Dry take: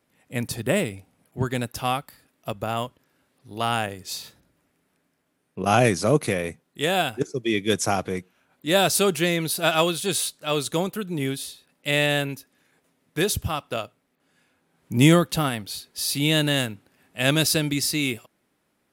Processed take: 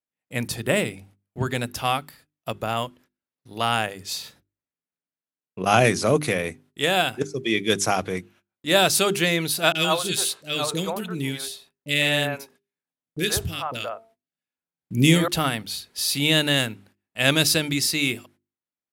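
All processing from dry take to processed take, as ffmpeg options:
-filter_complex "[0:a]asettb=1/sr,asplit=3[a][b][c];[a]atrim=end=9.724[d];[b]atrim=start=9.72:end=15.28,asetpts=PTS-STARTPTS,afade=t=in:d=0.004:c=qsin,afade=t=out:st=5.556:d=0.004:c=qsin,bandreject=f=225:t=h:w=4,bandreject=f=450:t=h:w=4,bandreject=f=675:t=h:w=4,bandreject=f=900:t=h:w=4,acrossover=split=460|1600[e][f][g];[g]adelay=30[h];[f]adelay=120[i];[e][i][h]amix=inputs=3:normalize=0,atrim=end_sample=245196[j];[c]atrim=start=15.276[k];[d][j]acrossfade=d=0.004:c1=hsin:c2=qsin[l];[l][k]acrossfade=d=0.004:c1=qsin:c2=hsin,agate=range=-30dB:threshold=-53dB:ratio=16:detection=peak,equalizer=f=2.8k:w=0.45:g=3.5,bandreject=f=50:t=h:w=6,bandreject=f=100:t=h:w=6,bandreject=f=150:t=h:w=6,bandreject=f=200:t=h:w=6,bandreject=f=250:t=h:w=6,bandreject=f=300:t=h:w=6,bandreject=f=350:t=h:w=6,bandreject=f=400:t=h:w=6"

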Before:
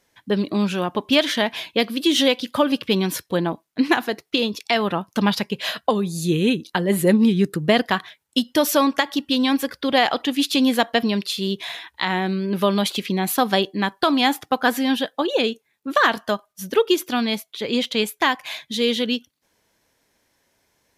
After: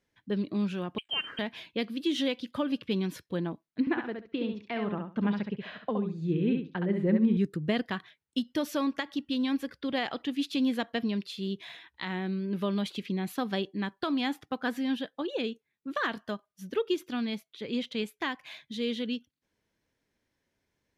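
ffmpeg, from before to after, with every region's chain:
-filter_complex "[0:a]asettb=1/sr,asplit=3[a][b][c];[a]atrim=end=0.984[d];[b]atrim=start=0.98:end=1.39,asetpts=PTS-STARTPTS,afade=t=in:d=0.004:c=qsin,afade=t=out:st=0.406:d=0.004:c=qsin,lowpass=f=2.9k:t=q:w=0.5098,lowpass=f=2.9k:t=q:w=0.6013,lowpass=f=2.9k:t=q:w=0.9,lowpass=f=2.9k:t=q:w=2.563,afreqshift=-3400,highpass=f=870:p=1,aeval=exprs='sgn(val(0))*max(abs(val(0))-0.00282,0)':c=same[e];[c]atrim=start=1.386[f];[d][e]acrossfade=d=0.004:c1=hsin:c2=qsin[g];[g][f]acrossfade=d=0.004:c1=qsin:c2=hsin,asettb=1/sr,asplit=3[h][i][j];[h]atrim=end=3.804[k];[i]atrim=start=3.8:end=7.37,asetpts=PTS-STARTPTS,afade=t=in:d=0.004:c=qsin,afade=t=out:st=3.566:d=0.004:c=qsin,lowpass=2.1k,aecho=1:1:68|136|204:0.562|0.107|0.0203,atrim=end_sample=157437[l];[j]atrim=start=7.366[m];[k][l]acrossfade=d=0.004:c1=hsin:c2=qsin[n];[n][m]acrossfade=d=0.004:c1=qsin:c2=hsin,lowpass=f=1.8k:p=1,equalizer=f=800:t=o:w=1.7:g=-8.5,volume=-7dB"

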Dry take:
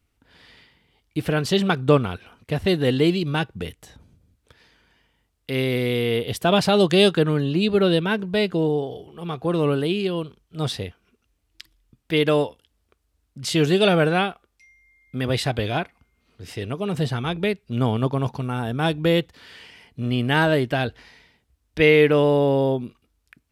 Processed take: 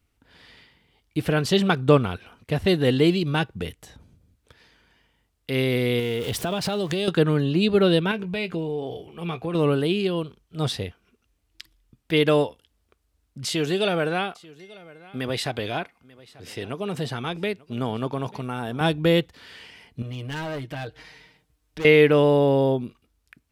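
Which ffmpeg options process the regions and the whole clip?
-filter_complex "[0:a]asettb=1/sr,asplit=3[a][b][c];[a]atrim=end=5.994[d];[b]atrim=start=5.99:end=7.08,asetpts=PTS-STARTPTS,afade=t=in:d=0.004:c=qsin,afade=t=out:st=1.086:d=0.004:c=qsin,aeval=exprs='val(0)+0.5*0.0237*sgn(val(0))':c=same,acompressor=threshold=-22dB:ratio=10:attack=3.2:release=140:knee=1:detection=peak[e];[c]atrim=start=7.076[f];[d][e]acrossfade=d=0.004:c1=hsin:c2=qsin[g];[g][f]acrossfade=d=0.004:c1=qsin:c2=hsin,asettb=1/sr,asplit=3[h][i][j];[h]atrim=end=8.114[k];[i]atrim=start=8.11:end=9.55,asetpts=PTS-STARTPTS,afade=t=in:d=0.004:c=qsin,afade=t=out:st=1.436:d=0.004:c=qsin,acompressor=threshold=-25dB:ratio=6:attack=3.2:release=140:knee=1:detection=peak,equalizer=f=2.4k:w=4.5:g=11.5,asplit=2[l][m];[m]adelay=18,volume=-12.5dB[n];[l][n]amix=inputs=2:normalize=0,atrim=end_sample=63504[o];[j]atrim=start=9.546[p];[k][o]acrossfade=d=0.004:c1=hsin:c2=qsin[q];[q][p]acrossfade=d=0.004:c1=qsin:c2=hsin,asettb=1/sr,asplit=3[r][s][t];[r]atrim=end=13.464[u];[s]atrim=start=13.46:end=18.81,asetpts=PTS-STARTPTS,afade=t=in:d=0.004:c=qsin,afade=t=out:st=5.346:d=0.004:c=qsin,highpass=f=210:p=1,acompressor=threshold=-26dB:ratio=1.5:attack=3.2:release=140:knee=1:detection=peak,aecho=1:1:889:0.0794,atrim=end_sample=235935[v];[t]atrim=start=18.806[w];[u][v]acrossfade=d=0.004:c1=hsin:c2=qsin[x];[x][w]acrossfade=d=0.004:c1=qsin:c2=hsin,asettb=1/sr,asplit=3[y][z][aa];[y]atrim=end=20.024[ab];[z]atrim=start=20.02:end=21.85,asetpts=PTS-STARTPTS,afade=t=in:d=0.004:c=qsin,afade=t=out:st=1.826:d=0.004:c=qsin,aecho=1:1:6.5:0.89,atrim=end_sample=80703,asoftclip=type=hard:threshold=-16dB,acompressor=threshold=-40dB:ratio=2:attack=3.2:release=140:knee=1:detection=peak[ac];[aa]atrim=start=21.846[ad];[ab][ac]acrossfade=d=0.004:c1=hsin:c2=qsin[ae];[ae][ad]acrossfade=d=0.004:c1=qsin:c2=hsin"

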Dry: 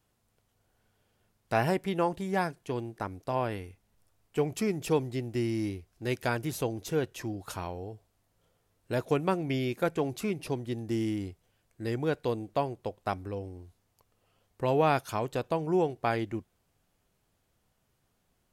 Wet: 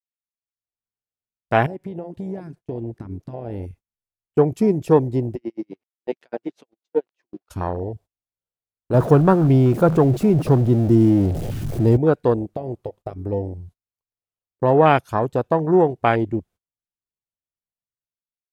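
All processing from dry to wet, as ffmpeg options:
-filter_complex "[0:a]asettb=1/sr,asplit=3[a][b][c];[a]atrim=end=1.664[d];[b]atrim=start=1.66:end=3.63,asetpts=PTS-STARTPTS,afade=t=in:d=0.004:c=qsin,afade=t=out:st=1.966:d=0.004:c=qsin,highshelf=f=6.2k:g=-6,acompressor=threshold=-36dB:ratio=12:attack=3.2:release=140:knee=1:detection=peak[e];[c]atrim=start=3.626[f];[d][e]acrossfade=d=0.004:c1=hsin:c2=qsin[g];[g][f]acrossfade=d=0.004:c1=qsin:c2=hsin,asettb=1/sr,asplit=3[h][i][j];[h]atrim=end=5.354[k];[i]atrim=start=5.35:end=7.5,asetpts=PTS-STARTPTS,afade=t=in:d=0.004:c=qsin,afade=t=out:st=2.146:d=0.004:c=qsin,aeval=exprs='val(0)*gte(abs(val(0)),0.00316)':c=same,highpass=350,lowpass=3.9k,aeval=exprs='val(0)*pow(10,-36*(0.5-0.5*cos(2*PI*8*n/s))/20)':c=same[l];[j]atrim=start=7.496[m];[k][l]acrossfade=d=0.004:c1=hsin:c2=qsin[n];[n][m]acrossfade=d=0.004:c1=qsin:c2=hsin,asettb=1/sr,asplit=3[o][p][q];[o]atrim=end=8.944[r];[p]atrim=start=8.94:end=11.97,asetpts=PTS-STARTPTS,afade=t=in:d=0.004:c=qsin,afade=t=out:st=3.026:d=0.004:c=qsin,aeval=exprs='val(0)+0.5*0.0266*sgn(val(0))':c=same,equalizer=f=140:t=o:w=0.7:g=6.5[s];[q]atrim=start=11.966[t];[r][s]acrossfade=d=0.004:c1=hsin:c2=qsin[u];[u][t]acrossfade=d=0.004:c1=qsin:c2=hsin,asettb=1/sr,asplit=3[v][w][x];[v]atrim=end=12.524[y];[w]atrim=start=12.52:end=13.32,asetpts=PTS-STARTPTS,afade=t=in:d=0.004:c=qsin,afade=t=out:st=0.796:d=0.004:c=qsin,equalizer=f=1.2k:w=7.5:g=6.5,acompressor=threshold=-34dB:ratio=10:attack=3.2:release=140:knee=1:detection=peak[z];[x]atrim=start=13.316[aa];[y][z]acrossfade=d=0.004:c1=hsin:c2=qsin[ab];[ab][aa]acrossfade=d=0.004:c1=qsin:c2=hsin,afwtdn=0.02,agate=range=-26dB:threshold=-56dB:ratio=16:detection=peak,dynaudnorm=f=140:g=9:m=13dB"

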